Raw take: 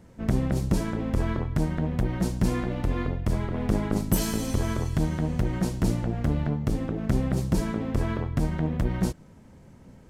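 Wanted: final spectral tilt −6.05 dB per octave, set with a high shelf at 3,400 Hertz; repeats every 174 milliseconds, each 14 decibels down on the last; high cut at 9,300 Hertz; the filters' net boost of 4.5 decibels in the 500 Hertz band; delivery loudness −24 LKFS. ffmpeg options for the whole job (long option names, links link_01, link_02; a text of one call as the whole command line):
ffmpeg -i in.wav -af "lowpass=9300,equalizer=frequency=500:width_type=o:gain=5.5,highshelf=frequency=3400:gain=8.5,aecho=1:1:174|348:0.2|0.0399,volume=2dB" out.wav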